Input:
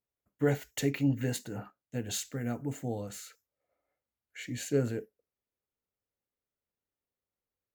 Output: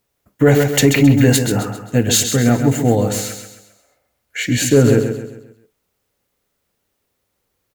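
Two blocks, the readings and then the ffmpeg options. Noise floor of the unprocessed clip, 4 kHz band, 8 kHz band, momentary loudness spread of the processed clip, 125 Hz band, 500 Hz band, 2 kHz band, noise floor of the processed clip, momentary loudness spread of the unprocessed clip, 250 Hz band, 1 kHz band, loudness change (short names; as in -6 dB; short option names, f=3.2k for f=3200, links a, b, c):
under -85 dBFS, +21.0 dB, +21.0 dB, 14 LU, +19.0 dB, +18.5 dB, +20.0 dB, -72 dBFS, 14 LU, +19.0 dB, +20.0 dB, +19.0 dB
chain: -filter_complex "[0:a]asplit=2[a][b];[b]asoftclip=type=tanh:threshold=-25dB,volume=-7.5dB[c];[a][c]amix=inputs=2:normalize=0,aecho=1:1:133|266|399|532|665:0.398|0.163|0.0669|0.0274|0.0112,alimiter=level_in=18.5dB:limit=-1dB:release=50:level=0:latency=1,volume=-1dB"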